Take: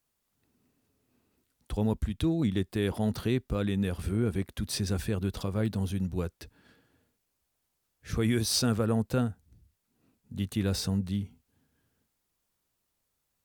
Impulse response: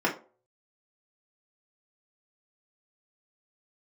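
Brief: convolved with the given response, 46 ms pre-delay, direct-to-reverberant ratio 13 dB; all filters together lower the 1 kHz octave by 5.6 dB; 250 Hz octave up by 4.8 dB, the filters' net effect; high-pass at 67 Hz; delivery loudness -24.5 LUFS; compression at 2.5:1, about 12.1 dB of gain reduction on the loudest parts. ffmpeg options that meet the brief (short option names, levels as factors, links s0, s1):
-filter_complex "[0:a]highpass=67,equalizer=f=250:t=o:g=6.5,equalizer=f=1000:t=o:g=-9,acompressor=threshold=0.0126:ratio=2.5,asplit=2[s0][s1];[1:a]atrim=start_sample=2205,adelay=46[s2];[s1][s2]afir=irnorm=-1:irlink=0,volume=0.0531[s3];[s0][s3]amix=inputs=2:normalize=0,volume=4.73"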